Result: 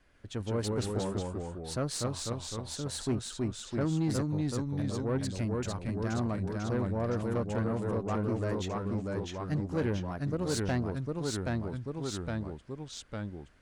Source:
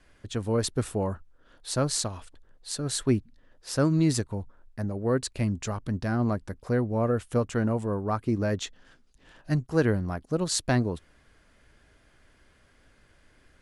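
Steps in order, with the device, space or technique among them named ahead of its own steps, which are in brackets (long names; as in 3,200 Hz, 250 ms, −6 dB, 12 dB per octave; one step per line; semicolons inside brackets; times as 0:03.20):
0:03.15–0:03.81: high-frequency loss of the air 350 metres
delay with pitch and tempo change per echo 140 ms, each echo −1 semitone, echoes 3
tube preamp driven hard (tube saturation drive 19 dB, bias 0.3; high-shelf EQ 5,400 Hz −4.5 dB)
level −4.5 dB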